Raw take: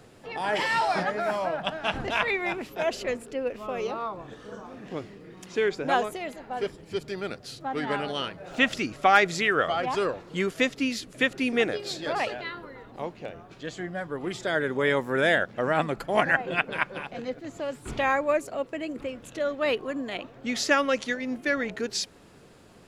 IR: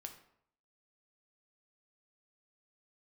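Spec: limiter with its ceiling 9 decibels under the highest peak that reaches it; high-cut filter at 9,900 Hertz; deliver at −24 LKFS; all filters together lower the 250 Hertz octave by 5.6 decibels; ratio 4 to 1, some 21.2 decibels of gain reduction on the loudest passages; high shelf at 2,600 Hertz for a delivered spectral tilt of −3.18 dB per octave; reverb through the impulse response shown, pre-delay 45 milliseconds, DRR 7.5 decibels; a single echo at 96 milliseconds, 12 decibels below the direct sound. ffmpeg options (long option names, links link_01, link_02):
-filter_complex "[0:a]lowpass=9900,equalizer=frequency=250:width_type=o:gain=-7,highshelf=frequency=2600:gain=4,acompressor=threshold=-42dB:ratio=4,alimiter=level_in=8.5dB:limit=-24dB:level=0:latency=1,volume=-8.5dB,aecho=1:1:96:0.251,asplit=2[link_01][link_02];[1:a]atrim=start_sample=2205,adelay=45[link_03];[link_02][link_03]afir=irnorm=-1:irlink=0,volume=-3dB[link_04];[link_01][link_04]amix=inputs=2:normalize=0,volume=19dB"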